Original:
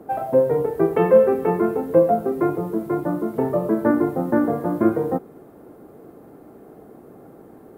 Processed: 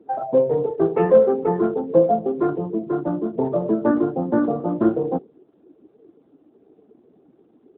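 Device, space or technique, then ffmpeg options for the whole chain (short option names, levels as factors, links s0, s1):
mobile call with aggressive noise cancelling: -af "highpass=f=110:w=0.5412,highpass=f=110:w=1.3066,afftdn=nr=15:nf=-30" -ar 8000 -c:a libopencore_amrnb -b:a 12200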